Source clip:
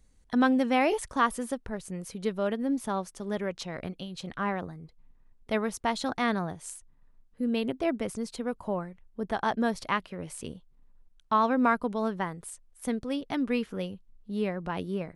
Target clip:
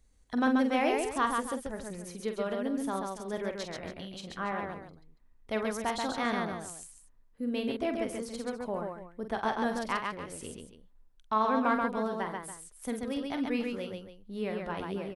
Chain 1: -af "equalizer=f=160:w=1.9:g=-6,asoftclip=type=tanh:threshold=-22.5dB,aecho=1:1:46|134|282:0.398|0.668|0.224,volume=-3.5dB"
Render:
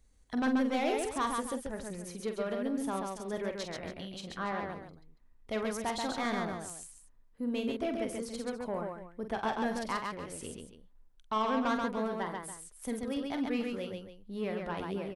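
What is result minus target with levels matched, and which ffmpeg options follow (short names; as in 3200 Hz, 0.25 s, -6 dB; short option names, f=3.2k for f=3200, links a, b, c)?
soft clip: distortion +15 dB
-af "equalizer=f=160:w=1.9:g=-6,asoftclip=type=tanh:threshold=-11.5dB,aecho=1:1:46|134|282:0.398|0.668|0.224,volume=-3.5dB"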